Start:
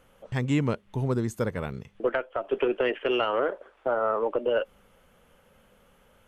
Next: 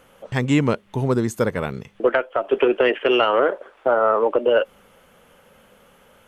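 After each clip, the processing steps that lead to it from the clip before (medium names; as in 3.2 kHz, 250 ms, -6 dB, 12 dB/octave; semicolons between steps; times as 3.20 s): bass shelf 100 Hz -11 dB; trim +8.5 dB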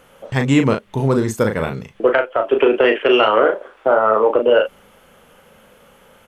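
doubling 37 ms -6 dB; trim +3 dB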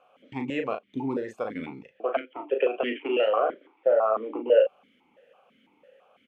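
stepped vowel filter 6 Hz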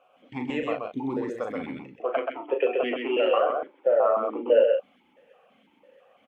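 coarse spectral quantiser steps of 15 dB; delay 129 ms -4 dB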